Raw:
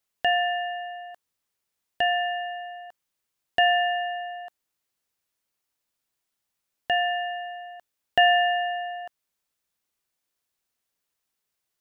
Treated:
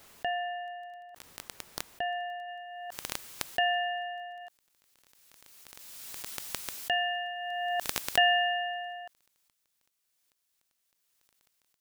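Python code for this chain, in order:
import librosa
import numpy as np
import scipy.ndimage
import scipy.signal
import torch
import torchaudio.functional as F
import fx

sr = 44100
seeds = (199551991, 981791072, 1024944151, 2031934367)

y = fx.high_shelf(x, sr, hz=2100.0, db=fx.steps((0.0, -8.0), (2.47, 2.0), (4.4, 8.5)))
y = fx.dmg_crackle(y, sr, seeds[0], per_s=10.0, level_db=-39.0)
y = fx.pre_swell(y, sr, db_per_s=21.0)
y = y * 10.0 ** (-8.0 / 20.0)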